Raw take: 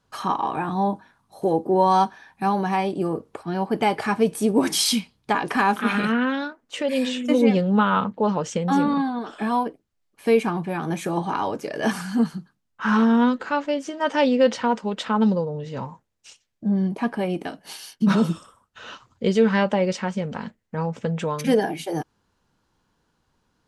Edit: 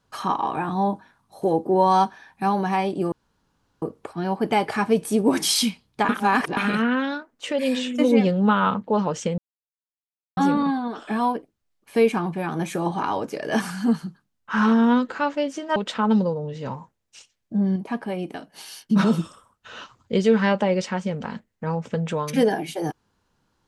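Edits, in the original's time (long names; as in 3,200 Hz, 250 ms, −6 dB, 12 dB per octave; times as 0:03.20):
0:03.12: splice in room tone 0.70 s
0:05.39–0:05.87: reverse
0:08.68: splice in silence 0.99 s
0:14.07–0:14.87: remove
0:16.87–0:17.77: clip gain −3.5 dB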